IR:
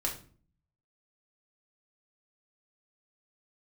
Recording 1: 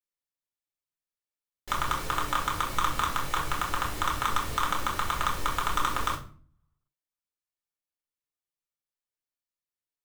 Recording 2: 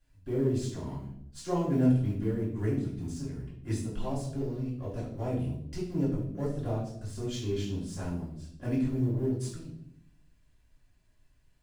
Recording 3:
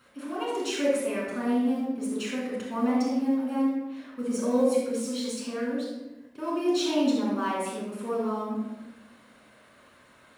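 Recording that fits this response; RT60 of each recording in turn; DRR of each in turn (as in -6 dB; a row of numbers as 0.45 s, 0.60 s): 1; 0.45 s, 0.75 s, 1.0 s; -2.0 dB, -7.5 dB, -5.5 dB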